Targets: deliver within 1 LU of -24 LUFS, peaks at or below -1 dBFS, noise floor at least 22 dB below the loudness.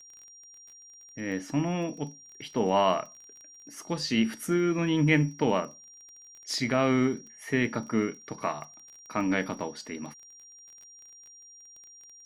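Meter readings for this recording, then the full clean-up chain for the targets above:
ticks 22/s; steady tone 5700 Hz; tone level -49 dBFS; loudness -28.5 LUFS; peak -11.0 dBFS; loudness target -24.0 LUFS
-> de-click; notch 5700 Hz, Q 30; gain +4.5 dB

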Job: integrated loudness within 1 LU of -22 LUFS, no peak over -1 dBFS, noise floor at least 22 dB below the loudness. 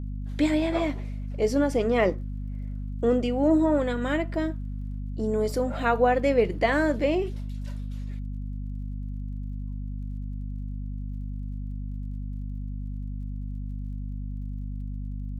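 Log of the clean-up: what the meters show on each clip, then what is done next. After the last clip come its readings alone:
ticks 38/s; hum 50 Hz; harmonics up to 250 Hz; hum level -30 dBFS; loudness -28.5 LUFS; peak -9.0 dBFS; loudness target -22.0 LUFS
-> de-click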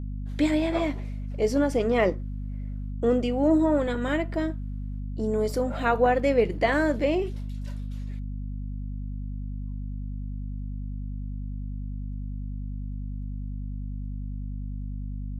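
ticks 0.065/s; hum 50 Hz; harmonics up to 250 Hz; hum level -30 dBFS
-> de-hum 50 Hz, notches 5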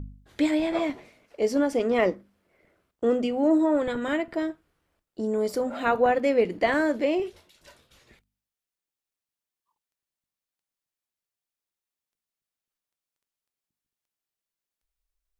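hum none; loudness -25.5 LUFS; peak -10.0 dBFS; loudness target -22.0 LUFS
-> gain +3.5 dB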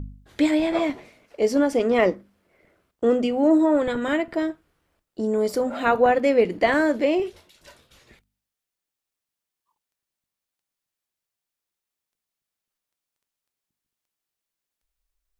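loudness -22.0 LUFS; peak -6.5 dBFS; noise floor -87 dBFS

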